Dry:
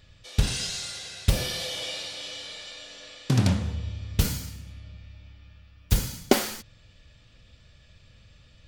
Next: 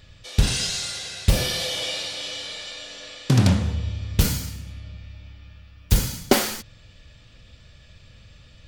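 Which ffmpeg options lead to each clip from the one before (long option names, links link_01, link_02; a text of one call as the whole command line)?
ffmpeg -i in.wav -af "asoftclip=type=tanh:threshold=-11dB,volume=5.5dB" out.wav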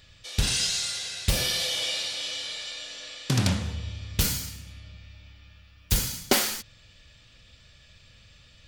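ffmpeg -i in.wav -af "tiltshelf=frequency=1200:gain=-4,volume=-3.5dB" out.wav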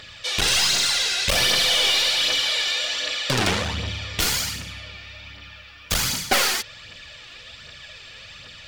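ffmpeg -i in.wav -filter_complex "[0:a]aeval=exprs='clip(val(0),-1,0.0282)':channel_layout=same,asplit=2[link_01][link_02];[link_02]highpass=frequency=720:poles=1,volume=23dB,asoftclip=type=tanh:threshold=-8dB[link_03];[link_01][link_03]amix=inputs=2:normalize=0,lowpass=frequency=3200:poles=1,volume=-6dB,aphaser=in_gain=1:out_gain=1:delay=2.9:decay=0.44:speed=1.3:type=triangular" out.wav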